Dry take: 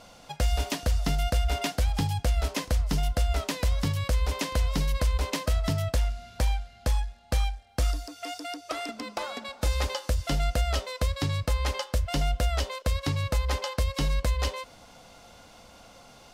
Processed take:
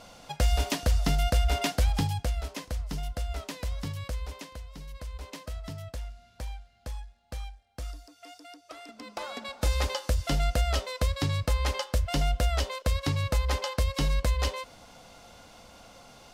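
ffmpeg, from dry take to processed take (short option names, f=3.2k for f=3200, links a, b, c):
-af "volume=19.5dB,afade=t=out:st=1.9:d=0.54:silence=0.375837,afade=t=out:st=4.04:d=0.62:silence=0.281838,afade=t=in:st=4.66:d=0.71:silence=0.473151,afade=t=in:st=8.86:d=0.65:silence=0.251189"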